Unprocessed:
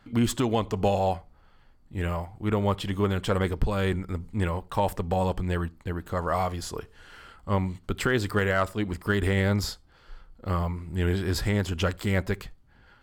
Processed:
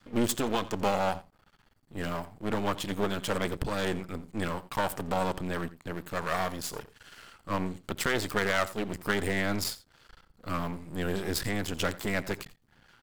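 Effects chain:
parametric band 160 Hz +7.5 dB 1.9 octaves
half-wave rectification
spectral tilt +2 dB per octave
single-tap delay 87 ms −18.5 dB

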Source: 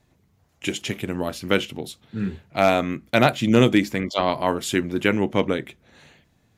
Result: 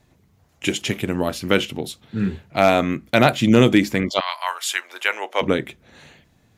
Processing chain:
0:04.19–0:05.41: high-pass filter 1,200 Hz → 540 Hz 24 dB per octave
in parallel at +0.5 dB: brickwall limiter −9.5 dBFS, peak gain reduction 7 dB
on the sum: level −2 dB

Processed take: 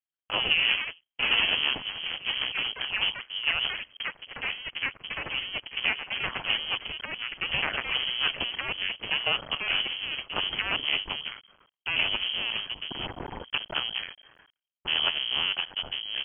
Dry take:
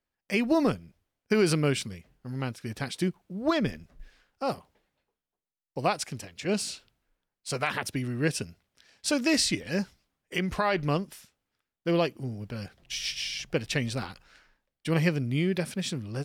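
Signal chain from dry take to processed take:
sub-harmonics by changed cycles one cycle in 2, muted
in parallel at 0 dB: downward compressor, threshold −38 dBFS, peak gain reduction 16 dB
on the sum: noise gate −56 dBFS, range −18 dB
delay with pitch and tempo change per echo 183 ms, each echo +4 semitones, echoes 3
voice inversion scrambler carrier 3,200 Hz
level −1 dB

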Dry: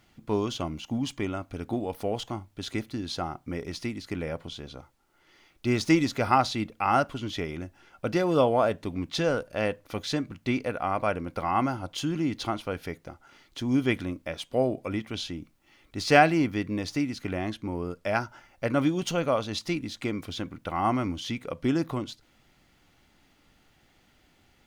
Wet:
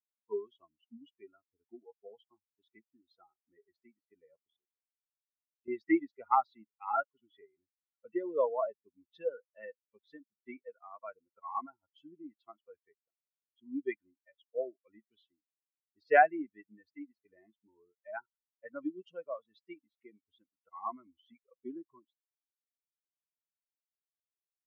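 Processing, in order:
spectral dynamics exaggerated over time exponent 3
Chebyshev band-pass filter 340–1,900 Hz, order 3
0:04.42–0:05.68: output level in coarse steps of 14 dB

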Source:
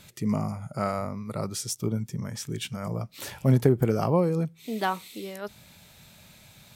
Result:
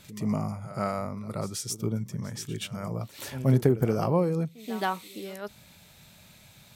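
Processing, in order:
echo ahead of the sound 127 ms −15 dB
level −1.5 dB

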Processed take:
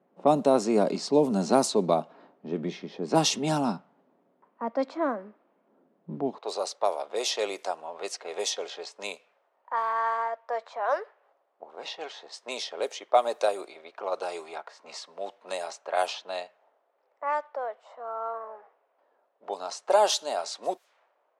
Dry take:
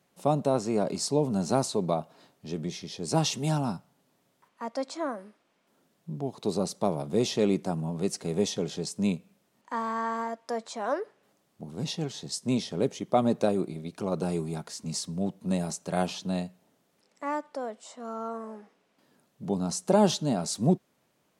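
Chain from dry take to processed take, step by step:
low-pass that shuts in the quiet parts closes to 610 Hz, open at −21.5 dBFS
high-pass filter 200 Hz 24 dB per octave, from 0:06.38 550 Hz
one half of a high-frequency compander encoder only
level +4.5 dB

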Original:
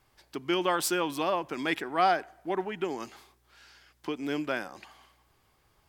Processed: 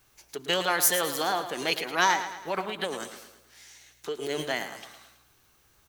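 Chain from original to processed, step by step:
high-shelf EQ 3,700 Hz +11 dB
formants moved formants +4 semitones
repeating echo 109 ms, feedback 49%, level −11 dB

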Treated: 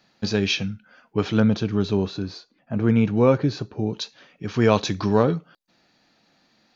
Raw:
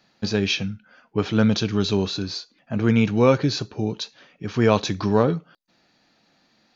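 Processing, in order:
0:01.40–0:03.93: high-shelf EQ 2,300 Hz −12 dB

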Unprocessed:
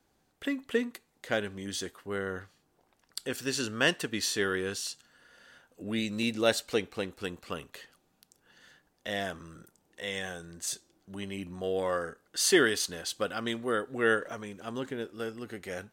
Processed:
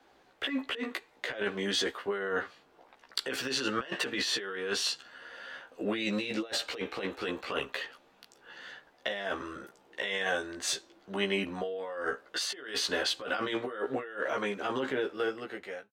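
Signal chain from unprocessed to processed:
fade-out on the ending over 1.06 s
three-way crossover with the lows and the highs turned down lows −15 dB, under 330 Hz, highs −17 dB, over 4,300 Hz
compressor whose output falls as the input rises −41 dBFS, ratio −1
double-tracking delay 15 ms −2.5 dB
level +5 dB

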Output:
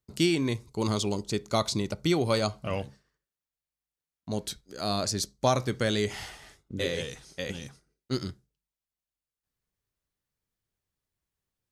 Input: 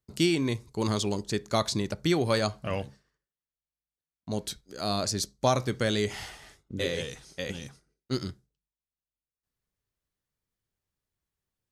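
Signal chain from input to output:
0:00.64–0:02.76: notch filter 1,700 Hz, Q 5.5

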